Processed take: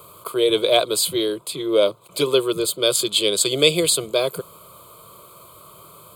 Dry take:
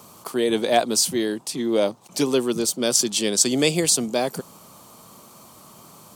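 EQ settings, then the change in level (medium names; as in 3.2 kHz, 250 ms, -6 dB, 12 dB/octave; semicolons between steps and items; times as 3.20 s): band-stop 2.8 kHz, Q 8.9; dynamic bell 3.8 kHz, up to +6 dB, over -38 dBFS, Q 1.6; static phaser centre 1.2 kHz, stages 8; +5.0 dB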